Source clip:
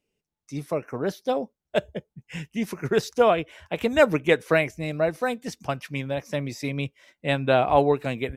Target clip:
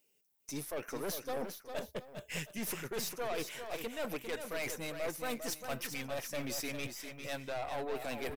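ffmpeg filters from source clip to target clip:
ffmpeg -i in.wav -af "aemphasis=mode=production:type=bsi,areverse,acompressor=threshold=-31dB:ratio=10,areverse,aeval=exprs='(tanh(56.2*val(0)+0.45)-tanh(0.45))/56.2':channel_layout=same,aecho=1:1:401|716:0.422|0.141,volume=1.5dB" out.wav

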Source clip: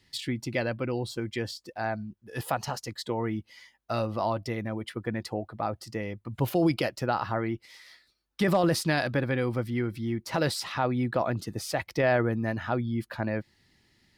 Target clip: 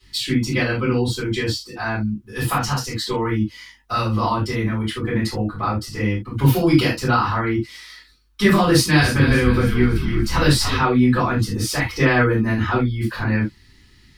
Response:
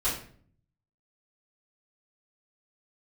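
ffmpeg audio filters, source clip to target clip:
-filter_complex "[0:a]equalizer=frequency=630:width=1.9:gain=-14,asettb=1/sr,asplit=3[link_01][link_02][link_03];[link_01]atrim=end=8.694[link_04];[link_02]atrim=start=8.69:end=10.76,asetpts=PTS-STARTPTS,afade=type=in:duration=0.004:curve=qsin,afade=type=out:start_time=2.066:duration=0.004:curve=qsin,asplit=6[link_05][link_06][link_07][link_08][link_09][link_10];[link_06]adelay=284,afreqshift=-53,volume=-9.5dB[link_11];[link_07]adelay=568,afreqshift=-106,volume=-16.2dB[link_12];[link_08]adelay=852,afreqshift=-159,volume=-23dB[link_13];[link_09]adelay=1136,afreqshift=-212,volume=-29.7dB[link_14];[link_10]adelay=1420,afreqshift=-265,volume=-36.5dB[link_15];[link_05][link_11][link_12][link_13][link_14][link_15]amix=inputs=6:normalize=0,atrim=end_sample=91287[link_16];[link_03]atrim=start=10.756[link_17];[link_04][link_16]acrossfade=duration=0.004:curve1=hsin:curve2=qsin[link_18];[link_18][link_17]acrossfade=duration=0.004:curve1=qsin:curve2=hsin[link_19];[1:a]atrim=start_sample=2205,atrim=end_sample=3969[link_20];[link_19][link_20]afir=irnorm=-1:irlink=0,volume=4.5dB"

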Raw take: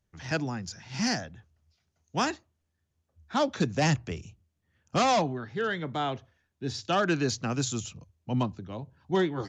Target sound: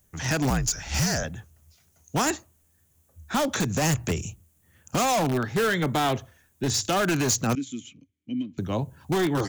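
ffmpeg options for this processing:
ffmpeg -i in.wav -filter_complex "[0:a]alimiter=level_in=1dB:limit=-24dB:level=0:latency=1:release=113,volume=-1dB,asettb=1/sr,asplit=3[link_01][link_02][link_03];[link_01]atrim=end=7.554[link_04];[link_02]atrim=start=7.55:end=8.58,asetpts=PTS-STARTPTS,afade=type=in:duration=0.004:curve=qsin,afade=type=out:start_time=1.026:duration=0.004:curve=qsin,asplit=3[link_05][link_06][link_07];[link_05]bandpass=frequency=270:width_type=q:width=8,volume=0dB[link_08];[link_06]bandpass=frequency=2290:width_type=q:width=8,volume=-6dB[link_09];[link_07]bandpass=frequency=3010:width_type=q:width=8,volume=-9dB[link_10];[link_08][link_09][link_10]amix=inputs=3:normalize=0[link_11];[link_03]atrim=start=8.576[link_12];[link_04][link_11]acrossfade=duration=0.004:curve1=hsin:curve2=qsin[link_13];[link_13][link_12]acrossfade=duration=0.004:curve1=qsin:curve2=hsin,aexciter=amount=6:drive=4.1:freq=6800,asplit=2[link_14][link_15];[link_15]aeval=exprs='(mod(25.1*val(0)+1,2)-1)/25.1':channel_layout=same,volume=-8dB[link_16];[link_14][link_16]amix=inputs=2:normalize=0,asettb=1/sr,asplit=3[link_17][link_18][link_19];[link_17]atrim=end=0.504[link_20];[link_18]atrim=start=0.5:end=1.24,asetpts=PTS-STARTPTS,afade=type=in:duration=0.004:curve=qsin,afade=type=out:start_time=0.736:duration=0.004:curve=qsin,afreqshift=-57[link_21];[link_19]atrim=start=1.236[link_22];[link_20][link_21]acrossfade=duration=0.004:curve1=hsin:curve2=qsin[link_23];[link_23][link_22]acrossfade=duration=0.004:curve1=qsin:curve2=hsin,volume=8dB" out.wav

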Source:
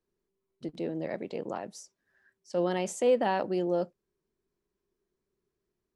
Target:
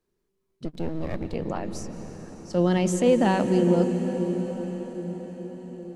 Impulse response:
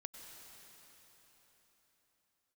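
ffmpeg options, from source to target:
-filter_complex "[0:a]asettb=1/sr,asplit=3[link_01][link_02][link_03];[link_01]atrim=end=0.654[link_04];[link_02]atrim=start=0.65:end=1.34,asetpts=PTS-STARTPTS,afade=type=in:duration=0.004:curve=qsin,afade=type=out:start_time=0.686:duration=0.004:curve=qsin,aeval=exprs='if(lt(val(0),0),0.251*val(0),val(0))':channel_layout=same[link_05];[link_03]atrim=start=1.336[link_06];[link_04][link_05]acrossfade=duration=0.004:curve1=hsin:curve2=qsin[link_07];[link_07][link_06]acrossfade=duration=0.004:curve1=qsin:curve2=hsin,asplit=2[link_08][link_09];[link_09]asubboost=boost=11.5:cutoff=240[link_10];[1:a]atrim=start_sample=2205,asetrate=27783,aresample=44100[link_11];[link_10][link_11]afir=irnorm=-1:irlink=0,volume=2dB[link_12];[link_08][link_12]amix=inputs=2:normalize=0"

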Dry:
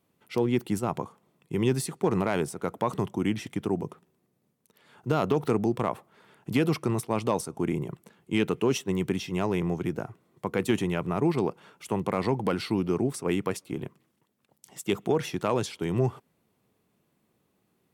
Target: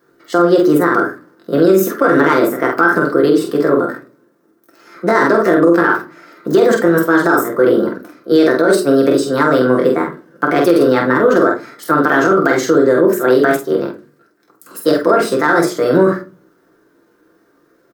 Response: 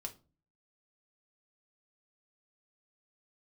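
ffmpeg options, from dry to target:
-filter_complex "[0:a]equalizer=frequency=125:width_type=o:width=1:gain=-10,equalizer=frequency=250:width_type=o:width=1:gain=11,equalizer=frequency=500:width_type=o:width=1:gain=-8,equalizer=frequency=1000:width_type=o:width=1:gain=12,equalizer=frequency=2000:width_type=o:width=1:gain=-10,equalizer=frequency=8000:width_type=o:width=1:gain=-3,asetrate=64194,aresample=44100,atempo=0.686977,asplit=2[link_01][link_02];[link_02]adelay=47,volume=-4.5dB[link_03];[link_01][link_03]amix=inputs=2:normalize=0[link_04];[1:a]atrim=start_sample=2205[link_05];[link_04][link_05]afir=irnorm=-1:irlink=0,alimiter=level_in=17dB:limit=-1dB:release=50:level=0:latency=1,volume=-1dB"

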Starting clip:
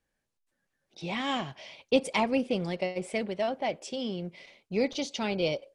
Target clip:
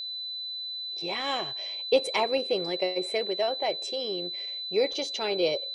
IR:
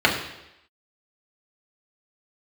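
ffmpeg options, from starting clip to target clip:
-af "aeval=exprs='val(0)+0.0224*sin(2*PI*4000*n/s)':channel_layout=same,lowshelf=frequency=300:width_type=q:width=3:gain=-7"

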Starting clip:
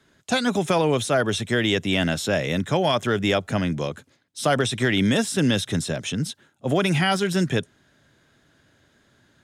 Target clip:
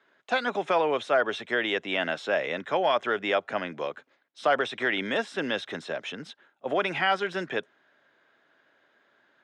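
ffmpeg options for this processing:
ffmpeg -i in.wav -af "highpass=520,lowpass=2400" out.wav

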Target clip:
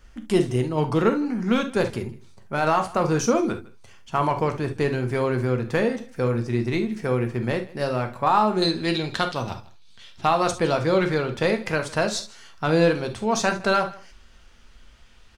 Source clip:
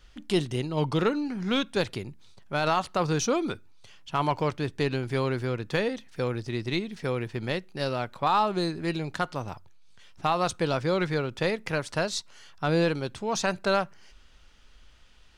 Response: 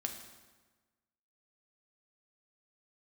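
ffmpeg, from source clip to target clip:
-filter_complex "[0:a]asetnsamples=nb_out_samples=441:pad=0,asendcmd='8.62 equalizer g 7.5;10.26 equalizer g -3',equalizer=frequency=3700:width=1.5:gain=-10,aecho=1:1:158:0.0841[link_01];[1:a]atrim=start_sample=2205,atrim=end_sample=3528[link_02];[link_01][link_02]afir=irnorm=-1:irlink=0,volume=5.5dB"

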